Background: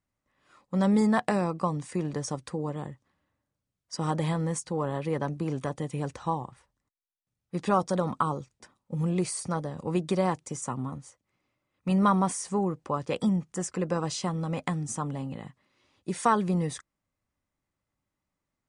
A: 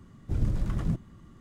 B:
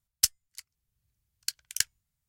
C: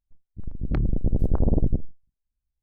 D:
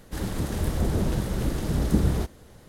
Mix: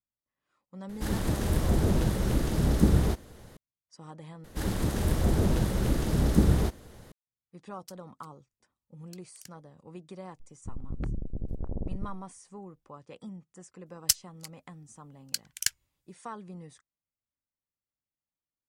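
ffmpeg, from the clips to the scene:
ffmpeg -i bed.wav -i cue0.wav -i cue1.wav -i cue2.wav -i cue3.wav -filter_complex "[4:a]asplit=2[link_01][link_02];[2:a]asplit=2[link_03][link_04];[0:a]volume=-17.5dB[link_05];[link_03]acompressor=threshold=-27dB:ratio=6:attack=3.2:release=140:knee=1:detection=peak[link_06];[3:a]acompressor=threshold=-29dB:ratio=5:attack=1.6:release=893:knee=1:detection=peak[link_07];[link_05]asplit=2[link_08][link_09];[link_08]atrim=end=4.444[link_10];[link_02]atrim=end=2.68[link_11];[link_09]atrim=start=7.116[link_12];[link_01]atrim=end=2.68,asetpts=PTS-STARTPTS,afade=type=in:duration=0.004:curve=hsin,afade=type=out:start_time=2.676:duration=0.004:curve=hsin,adelay=890[link_13];[link_06]atrim=end=2.28,asetpts=PTS-STARTPTS,volume=-16.5dB,afade=type=in:duration=0.004:curve=hsin,afade=type=out:start_time=2.276:duration=0.004:curve=hsin,adelay=7650[link_14];[link_07]atrim=end=2.62,asetpts=PTS-STARTPTS,afade=type=in:duration=0.004:curve=hsin,afade=type=out:start_time=2.616:duration=0.004:curve=hsin,adelay=10290[link_15];[link_04]atrim=end=2.28,asetpts=PTS-STARTPTS,volume=-0.5dB,afade=type=in:duration=0.004:curve=hsin,afade=type=out:start_time=2.276:duration=0.004:curve=hsin,adelay=13860[link_16];[link_10][link_11]acrossfade=duration=0.004:curve1=hsin:curve2=hsin[link_17];[link_17][link_12]acrossfade=duration=0.004:curve1=hsin:curve2=hsin[link_18];[link_18][link_13][link_14][link_15][link_16]amix=inputs=5:normalize=0" out.wav

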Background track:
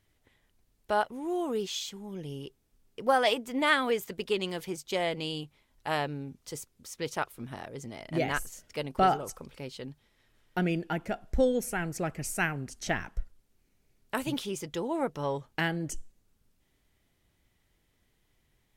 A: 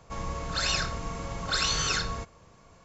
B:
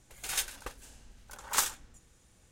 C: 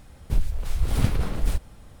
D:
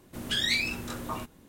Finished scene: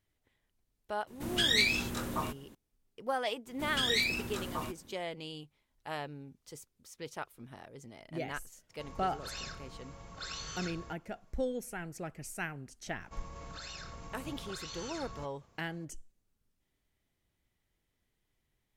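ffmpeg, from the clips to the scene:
ffmpeg -i bed.wav -i cue0.wav -i cue1.wav -i cue2.wav -i cue3.wav -filter_complex "[4:a]asplit=2[link_01][link_02];[1:a]asplit=2[link_03][link_04];[0:a]volume=-9dB[link_05];[link_02]acontrast=88[link_06];[link_04]acompressor=threshold=-30dB:ratio=6:attack=3.2:release=140:knee=1:detection=peak[link_07];[link_01]atrim=end=1.48,asetpts=PTS-STARTPTS,afade=type=in:duration=0.004:curve=hsin,afade=type=out:start_time=1.476:duration=0.004:curve=hsin,adelay=1070[link_08];[link_06]atrim=end=1.48,asetpts=PTS-STARTPTS,volume=-10dB,afade=type=in:duration=0.004:curve=hsin,afade=type=out:start_time=1.476:duration=0.004:curve=hsin,adelay=3460[link_09];[link_03]atrim=end=2.84,asetpts=PTS-STARTPTS,volume=-15dB,afade=type=in:duration=0.004:curve=hsin,afade=type=out:start_time=2.836:duration=0.004:curve=hsin,adelay=8690[link_10];[link_07]atrim=end=2.84,asetpts=PTS-STARTPTS,volume=-11dB,afade=type=in:duration=0.004:curve=hsin,afade=type=out:start_time=2.836:duration=0.004:curve=hsin,adelay=13010[link_11];[link_05][link_08][link_09][link_10][link_11]amix=inputs=5:normalize=0" out.wav

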